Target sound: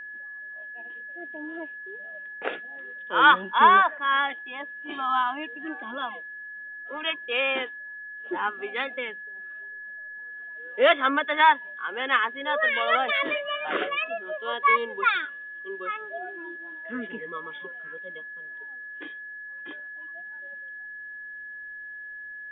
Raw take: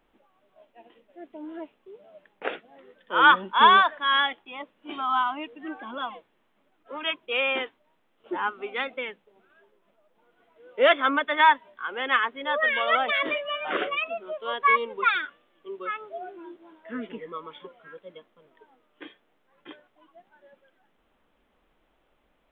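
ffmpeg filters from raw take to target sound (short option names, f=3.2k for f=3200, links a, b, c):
-filter_complex "[0:a]aeval=exprs='val(0)+0.0141*sin(2*PI*1700*n/s)':c=same,asettb=1/sr,asplit=3[a][b][c];[a]atrim=end=3.584[d];[b]atrim=start=3.58:end=4.3,asetpts=PTS-STARTPTS,afade=t=in:d=0.004:c=qsin,afade=t=out:st=0.716:d=0.004:c=qsin,lowpass=f=2.7k:w=0.5412,lowpass=f=2.7k:w=1.3066[e];[c]atrim=start=4.296[f];[d][e]acrossfade=d=0.004:c1=hsin:c2=qsin[g];[g][f]acrossfade=d=0.004:c1=qsin:c2=hsin"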